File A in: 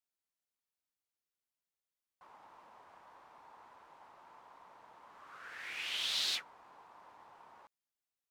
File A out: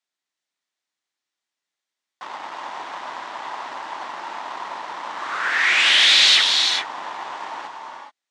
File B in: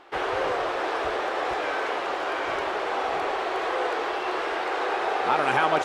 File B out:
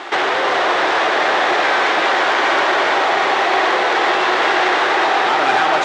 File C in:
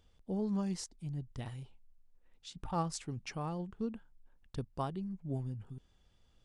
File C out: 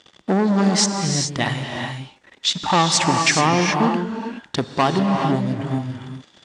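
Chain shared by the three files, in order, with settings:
compression 4:1, threshold -34 dBFS; waveshaping leveller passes 3; cabinet simulation 250–7800 Hz, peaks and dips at 480 Hz -5 dB, 1.9 kHz +5 dB, 3.6 kHz +4 dB; gated-style reverb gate 450 ms rising, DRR 3 dB; peak normalisation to -3 dBFS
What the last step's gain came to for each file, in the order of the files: +14.0 dB, +10.0 dB, +16.5 dB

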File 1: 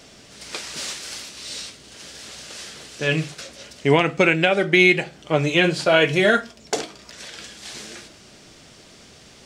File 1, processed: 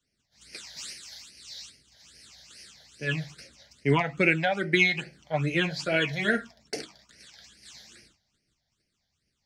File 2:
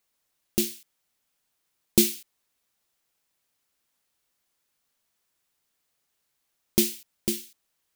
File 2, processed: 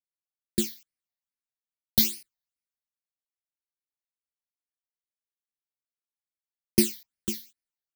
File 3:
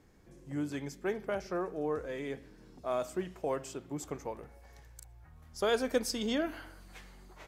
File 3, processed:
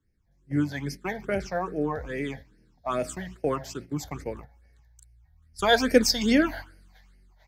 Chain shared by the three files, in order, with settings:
gate -45 dBFS, range -10 dB; phase shifter stages 8, 2.4 Hz, lowest notch 340–1100 Hz; three bands expanded up and down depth 40%; normalise loudness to -27 LUFS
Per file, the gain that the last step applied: -6.0 dB, -0.5 dB, +11.5 dB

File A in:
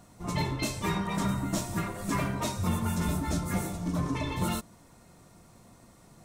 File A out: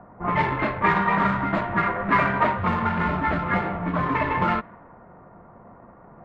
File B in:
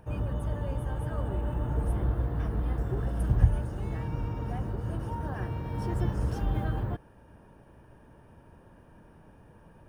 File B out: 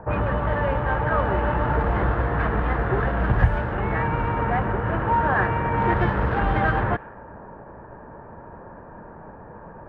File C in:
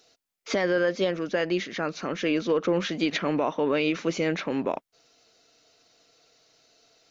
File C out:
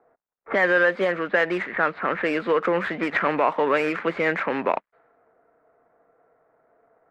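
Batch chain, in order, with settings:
median filter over 15 samples; level-controlled noise filter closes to 890 Hz, open at -21 dBFS; FFT filter 200 Hz 0 dB, 300 Hz -9 dB, 620 Hz -10 dB, 1.9 kHz -1 dB, 5.7 kHz -20 dB, 8.5 kHz -10 dB; in parallel at +2 dB: compression, threshold -34 dBFS; on the sum: three-band isolator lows -21 dB, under 380 Hz, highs -18 dB, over 6.2 kHz; level-controlled noise filter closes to 2.2 kHz, open at -31 dBFS; normalise loudness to -23 LUFS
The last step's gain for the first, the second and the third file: +17.0 dB, +21.5 dB, +11.0 dB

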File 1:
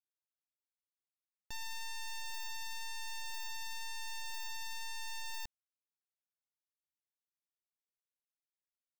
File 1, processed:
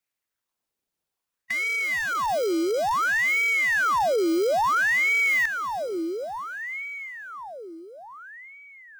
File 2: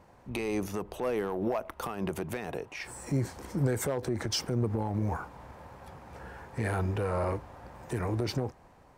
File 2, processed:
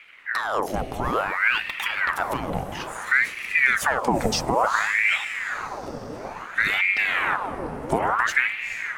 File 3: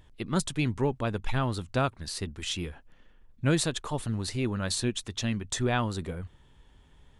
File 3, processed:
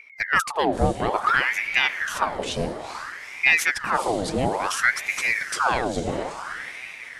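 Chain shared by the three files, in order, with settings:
harmonic-percussive split percussive +7 dB; bass shelf 410 Hz +10.5 dB; on a send: echo that smears into a reverb 451 ms, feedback 56%, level -9 dB; on the sum: ring modulator with a swept carrier 1.3 kHz, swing 75%, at 0.58 Hz; normalise loudness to -23 LUFS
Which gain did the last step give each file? +7.5 dB, +1.0 dB, -2.0 dB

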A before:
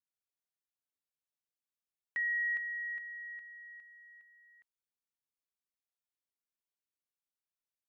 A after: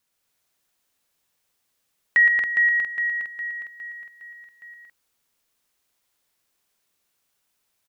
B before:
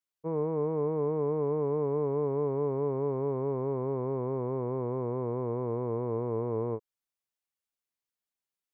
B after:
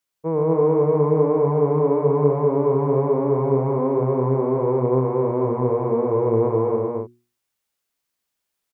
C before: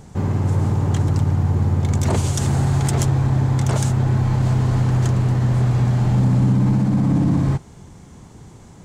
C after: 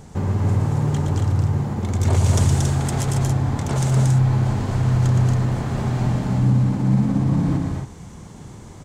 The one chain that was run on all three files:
hum notches 60/120/180/240/300/360 Hz; compression, threshold -19 dBFS; loudspeakers at several distances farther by 40 m -6 dB, 79 m -3 dB, 95 m -6 dB; normalise loudness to -20 LUFS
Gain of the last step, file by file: +18.0 dB, +9.0 dB, +0.5 dB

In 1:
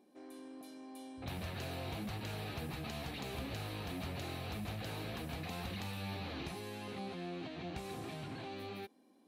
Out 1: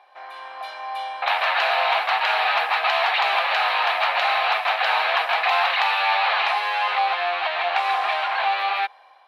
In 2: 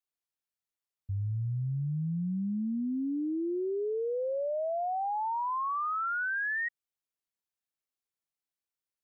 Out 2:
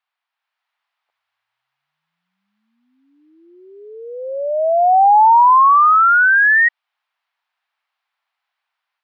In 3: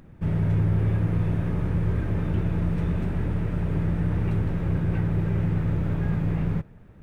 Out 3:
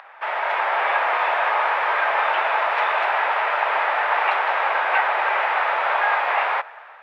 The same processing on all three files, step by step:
steep high-pass 750 Hz 36 dB/octave; dynamic bell 1.5 kHz, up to -3 dB, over -48 dBFS, Q 1.3; level rider gain up to 5 dB; distance through air 380 m; peak normalisation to -6 dBFS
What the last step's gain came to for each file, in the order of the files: +27.0 dB, +21.0 dB, +24.0 dB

